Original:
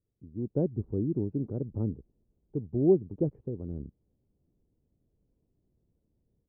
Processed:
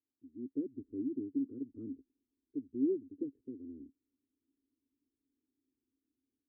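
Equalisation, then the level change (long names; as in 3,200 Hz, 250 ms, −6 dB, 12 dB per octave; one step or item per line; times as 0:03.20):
formant filter i
phaser with its sweep stopped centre 650 Hz, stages 6
+4.0 dB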